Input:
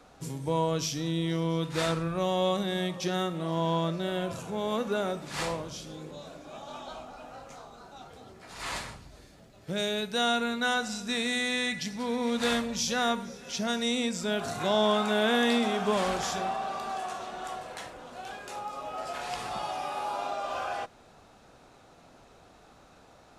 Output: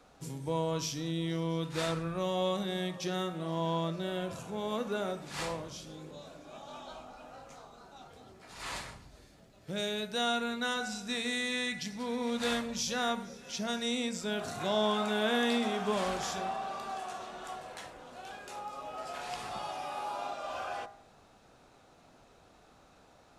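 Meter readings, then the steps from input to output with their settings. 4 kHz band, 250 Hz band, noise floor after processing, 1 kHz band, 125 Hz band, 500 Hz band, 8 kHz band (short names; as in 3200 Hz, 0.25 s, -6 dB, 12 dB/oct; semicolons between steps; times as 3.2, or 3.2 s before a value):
-4.0 dB, -4.5 dB, -61 dBFS, -4.5 dB, -4.5 dB, -4.5 dB, -4.0 dB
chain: de-hum 57.2 Hz, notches 39; gain -4 dB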